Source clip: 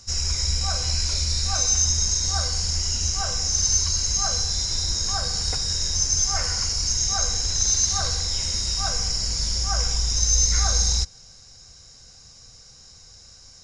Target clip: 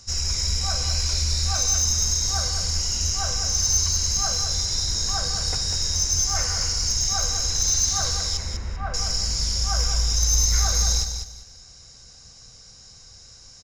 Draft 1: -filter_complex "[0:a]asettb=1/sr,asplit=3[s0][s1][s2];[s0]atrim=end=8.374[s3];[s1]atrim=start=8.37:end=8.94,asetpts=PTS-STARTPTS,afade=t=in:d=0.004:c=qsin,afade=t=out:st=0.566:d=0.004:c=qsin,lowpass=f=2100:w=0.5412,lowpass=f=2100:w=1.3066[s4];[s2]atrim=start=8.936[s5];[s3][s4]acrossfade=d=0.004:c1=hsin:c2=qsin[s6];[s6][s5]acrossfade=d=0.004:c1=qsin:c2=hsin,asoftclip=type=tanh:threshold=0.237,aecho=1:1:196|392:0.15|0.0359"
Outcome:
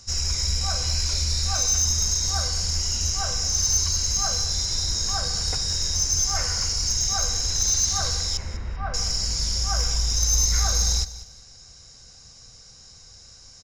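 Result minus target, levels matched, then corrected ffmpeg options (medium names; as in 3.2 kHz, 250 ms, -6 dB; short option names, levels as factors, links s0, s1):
echo-to-direct -9 dB
-filter_complex "[0:a]asettb=1/sr,asplit=3[s0][s1][s2];[s0]atrim=end=8.374[s3];[s1]atrim=start=8.37:end=8.94,asetpts=PTS-STARTPTS,afade=t=in:d=0.004:c=qsin,afade=t=out:st=0.566:d=0.004:c=qsin,lowpass=f=2100:w=0.5412,lowpass=f=2100:w=1.3066[s4];[s2]atrim=start=8.936[s5];[s3][s4]acrossfade=d=0.004:c1=hsin:c2=qsin[s6];[s6][s5]acrossfade=d=0.004:c1=qsin:c2=hsin,asoftclip=type=tanh:threshold=0.237,aecho=1:1:196|392|588:0.422|0.101|0.0243"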